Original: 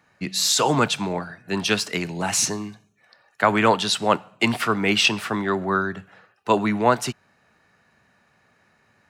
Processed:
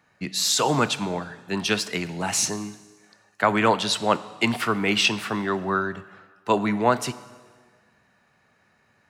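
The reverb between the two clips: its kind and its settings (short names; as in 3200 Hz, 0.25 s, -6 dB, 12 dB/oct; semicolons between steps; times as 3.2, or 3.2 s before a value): plate-style reverb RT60 1.6 s, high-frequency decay 0.9×, DRR 15 dB; gain -2 dB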